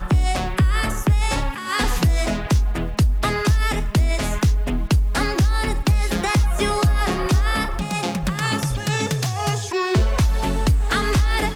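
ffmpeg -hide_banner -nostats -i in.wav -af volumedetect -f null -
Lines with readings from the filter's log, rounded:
mean_volume: -19.0 dB
max_volume: -10.5 dB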